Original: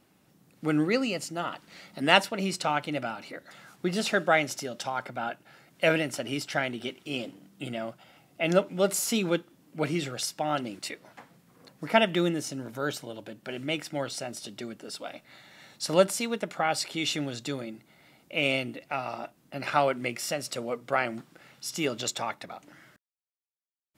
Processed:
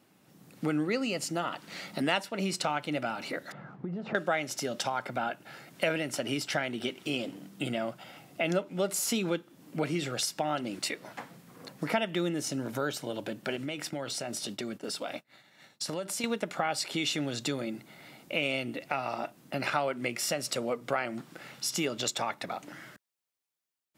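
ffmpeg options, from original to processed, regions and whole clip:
-filter_complex "[0:a]asettb=1/sr,asplit=3[a][b][c];[a]atrim=end=3.524[d];[b]atrim=start=3.52:end=4.15,asetpts=PTS-STARTPTS,afade=t=in:d=0.004:c=qsin,afade=t=out:st=0.626:d=0.004:c=qsin,lowpass=1.1k,equalizer=f=150:t=o:w=0.74:g=8.5,acompressor=threshold=-39dB:ratio=10:attack=3.2:release=140:knee=1:detection=peak[e];[c]atrim=start=4.146[f];[d][e]acrossfade=d=0.004:c1=hsin:c2=qsin[g];[g][f]acrossfade=d=0.004:c1=qsin:c2=hsin,asettb=1/sr,asplit=3[h][i][j];[h]atrim=end=13.564[k];[i]atrim=start=13.56:end=16.24,asetpts=PTS-STARTPTS,afade=t=in:d=0.004:c=qsin,afade=t=out:st=2.676:d=0.004:c=qsin,agate=range=-33dB:threshold=-44dB:ratio=3:release=100:detection=peak,acompressor=threshold=-38dB:ratio=5:attack=3.2:release=140:knee=1:detection=peak[l];[j]atrim=start=16.236[m];[k][l]acrossfade=d=0.004:c1=hsin:c2=qsin[n];[n][m]acrossfade=d=0.004:c1=qsin:c2=hsin,acompressor=threshold=-37dB:ratio=3,highpass=100,dynaudnorm=f=220:g=3:m=7dB"

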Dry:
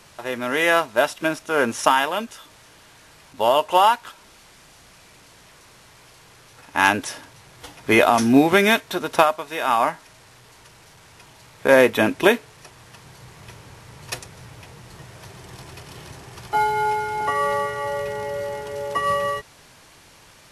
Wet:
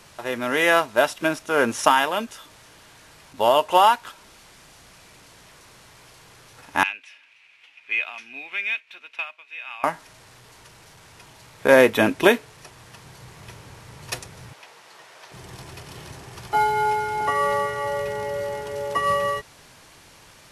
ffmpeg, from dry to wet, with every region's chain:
-filter_complex "[0:a]asettb=1/sr,asplit=3[a][b][c];[a]atrim=end=6.834[d];[b]atrim=start=6.83:end=9.84,asetpts=PTS-STARTPTS,afade=t=in:d=0.004:c=qsin,afade=t=out:st=3.006:d=0.004:c=qsin,acompressor=mode=upward:threshold=-32dB:ratio=2.5:attack=3.2:release=140:knee=2.83:detection=peak,bandpass=f=2.5k:t=q:w=7[e];[c]atrim=start=9.836[f];[d][e]acrossfade=d=0.004:c1=hsin:c2=qsin[g];[g][f]acrossfade=d=0.004:c1=qsin:c2=hsin,asettb=1/sr,asplit=3[h][i][j];[h]atrim=end=14.534[k];[i]atrim=start=14.53:end=15.32,asetpts=PTS-STARTPTS,afade=t=in:d=0.004:c=qsin,afade=t=out:st=0.786:d=0.004:c=qsin,acrossover=split=6000[l][m];[m]acompressor=threshold=-58dB:ratio=4:attack=1:release=60[n];[l][n]amix=inputs=2:normalize=0,highpass=590[o];[j]atrim=start=15.316[p];[k][o]acrossfade=d=0.004:c1=hsin:c2=qsin[q];[q][p]acrossfade=d=0.004:c1=qsin:c2=hsin"

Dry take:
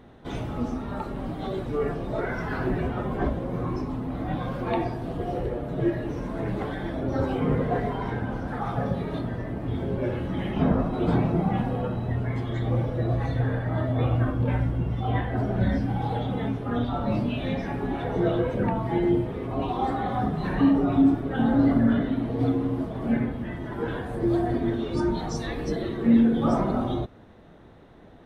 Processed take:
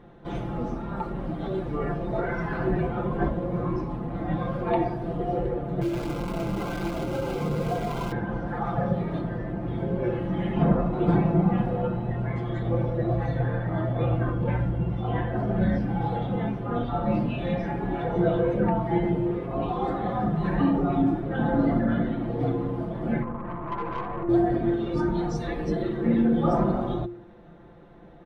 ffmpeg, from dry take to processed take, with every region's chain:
-filter_complex "[0:a]asettb=1/sr,asplit=3[a][b][c];[a]atrim=end=5.814[d];[b]atrim=start=5.81:end=8.12,asetpts=PTS-STARTPTS,afade=t=in:d=0.004:c=qsin,afade=t=out:st=2.306:d=0.004:c=qsin,acrusher=bits=6:dc=4:mix=0:aa=0.000001,acompressor=threshold=-25dB:ratio=3:attack=3.2:release=140:knee=1:detection=peak,asuperstop=centerf=1800:order=8:qfactor=6.4[e];[c]atrim=start=8.116[f];[d][e]acrossfade=d=0.004:c1=hsin:c2=qsin[g];[g][f]acrossfade=d=0.004:c1=qsin:c2=hsin,asettb=1/sr,asplit=3[h][i][j];[h]atrim=end=23.224[k];[i]atrim=start=23.22:end=24.29,asetpts=PTS-STARTPTS,afade=t=in:d=0.004:c=qsin,afade=t=out:st=1.066:d=0.004:c=qsin,acompressor=threshold=-27dB:ratio=5:attack=3.2:release=140:knee=1:detection=peak,lowpass=f=1.1k:t=q:w=12,aeval=exprs='(tanh(22.4*val(0)+0.5)-tanh(0.5))/22.4':c=same[l];[j]atrim=start=24.286[m];[k][l]acrossfade=d=0.004:c1=hsin:c2=qsin[n];[n][m]acrossfade=d=0.004:c1=qsin:c2=hsin,highshelf=f=3.2k:g=-11.5,aecho=1:1:5.8:0.65,bandreject=f=116.4:t=h:w=4,bandreject=f=232.8:t=h:w=4,bandreject=f=349.2:t=h:w=4"

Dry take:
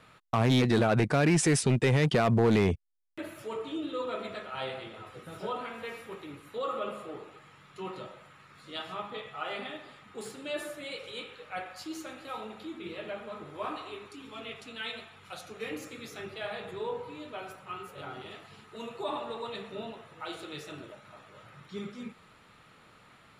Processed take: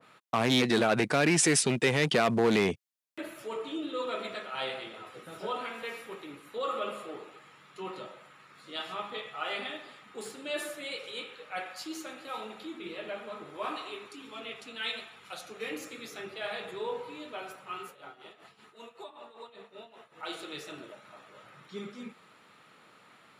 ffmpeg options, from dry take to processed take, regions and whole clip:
-filter_complex "[0:a]asettb=1/sr,asplit=3[a][b][c];[a]atrim=end=17.884[d];[b]atrim=start=17.88:end=20.23,asetpts=PTS-STARTPTS,afade=t=in:d=0.004:c=qsin,afade=t=out:st=2.346:d=0.004:c=qsin,acrossover=split=460|1300[e][f][g];[e]acompressor=threshold=-54dB:ratio=4[h];[f]acompressor=threshold=-47dB:ratio=4[i];[g]acompressor=threshold=-52dB:ratio=4[j];[h][i][j]amix=inputs=3:normalize=0,tremolo=f=5.2:d=0.76[k];[c]atrim=start=20.226[l];[d][k]acrossfade=d=0.004:c1=hsin:c2=qsin[m];[m][l]acrossfade=d=0.004:c1=qsin:c2=hsin,highpass=200,adynamicequalizer=threshold=0.00891:dfrequency=1600:dqfactor=0.7:tfrequency=1600:tqfactor=0.7:attack=5:release=100:ratio=0.375:range=2.5:mode=boostabove:tftype=highshelf"

